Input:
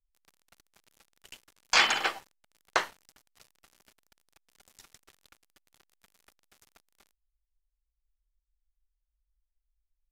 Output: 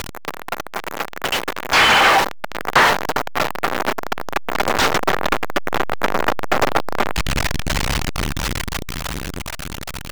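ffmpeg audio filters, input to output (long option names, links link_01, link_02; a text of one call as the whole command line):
ffmpeg -i in.wav -filter_complex "[0:a]aeval=exprs='val(0)+0.5*0.0708*sgn(val(0))':channel_layout=same,dynaudnorm=framelen=260:gausssize=17:maxgain=14.5dB,aeval=exprs='clip(val(0),-1,0.178)':channel_layout=same,acrossover=split=7100[link_01][link_02];[link_02]acompressor=threshold=-30dB:ratio=4:attack=1:release=60[link_03];[link_01][link_03]amix=inputs=2:normalize=0,asplit=2[link_04][link_05];[link_05]highpass=frequency=720:poles=1,volume=26dB,asoftclip=type=tanh:threshold=-2dB[link_06];[link_04][link_06]amix=inputs=2:normalize=0,lowpass=frequency=1700:poles=1,volume=-6dB" out.wav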